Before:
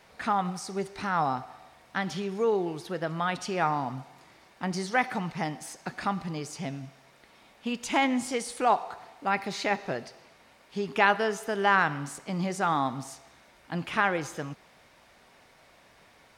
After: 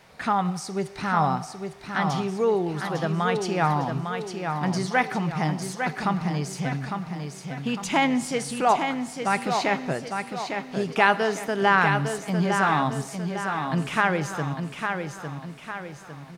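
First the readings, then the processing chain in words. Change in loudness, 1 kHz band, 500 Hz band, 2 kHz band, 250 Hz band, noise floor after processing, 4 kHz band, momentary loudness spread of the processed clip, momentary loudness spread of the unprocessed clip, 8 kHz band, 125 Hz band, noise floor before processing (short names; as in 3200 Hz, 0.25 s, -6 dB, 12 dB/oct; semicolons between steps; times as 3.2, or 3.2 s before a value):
+4.0 dB, +4.0 dB, +4.5 dB, +4.0 dB, +6.0 dB, -42 dBFS, +4.0 dB, 10 LU, 14 LU, +4.0 dB, +9.5 dB, -59 dBFS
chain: bell 150 Hz +8 dB 0.46 oct; feedback echo 0.854 s, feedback 46%, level -6 dB; gain +3 dB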